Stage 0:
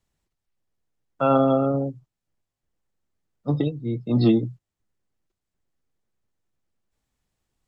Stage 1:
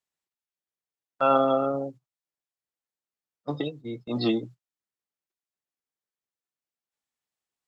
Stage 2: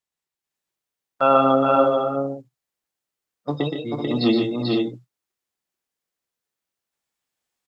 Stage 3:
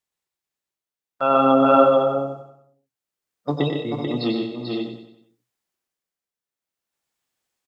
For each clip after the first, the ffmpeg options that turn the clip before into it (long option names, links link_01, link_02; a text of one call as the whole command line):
ffmpeg -i in.wav -af "highpass=frequency=850:poles=1,agate=range=-11dB:threshold=-45dB:ratio=16:detection=peak,volume=3dB" out.wav
ffmpeg -i in.wav -filter_complex "[0:a]asplit=2[link_01][link_02];[link_02]aecho=0:1:120|149|439|504:0.501|0.355|0.668|0.473[link_03];[link_01][link_03]amix=inputs=2:normalize=0,dynaudnorm=framelen=180:gausssize=5:maxgain=5dB" out.wav
ffmpeg -i in.wav -af "tremolo=f=0.55:d=0.65,aecho=1:1:93|186|279|372|465:0.355|0.163|0.0751|0.0345|0.0159,volume=2dB" out.wav